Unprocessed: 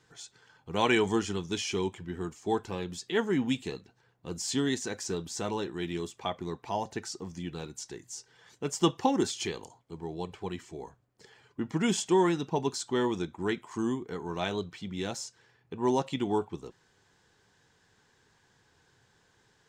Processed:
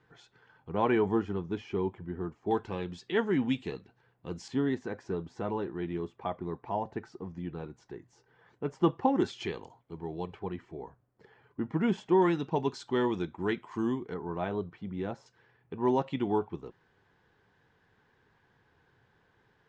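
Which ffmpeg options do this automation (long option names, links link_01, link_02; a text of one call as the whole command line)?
ffmpeg -i in.wav -af "asetnsamples=nb_out_samples=441:pad=0,asendcmd='0.72 lowpass f 1300;2.51 lowpass f 3000;4.48 lowpass f 1500;9.16 lowpass f 2700;10.39 lowpass f 1700;12.22 lowpass f 3200;14.14 lowpass f 1400;15.26 lowpass f 2400',lowpass=2200" out.wav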